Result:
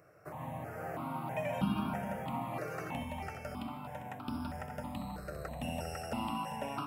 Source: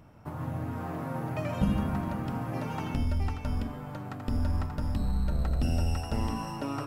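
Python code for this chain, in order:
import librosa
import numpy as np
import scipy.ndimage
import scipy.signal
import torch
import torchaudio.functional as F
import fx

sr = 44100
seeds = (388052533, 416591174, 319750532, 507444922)

y = scipy.signal.sosfilt(scipy.signal.butter(2, 220.0, 'highpass', fs=sr, output='sos'), x)
y = y + 10.0 ** (-9.5 / 20.0) * np.pad(y, (int(399 * sr / 1000.0), 0))[:len(y)]
y = fx.phaser_held(y, sr, hz=3.1, low_hz=910.0, high_hz=1900.0)
y = y * 10.0 ** (1.0 / 20.0)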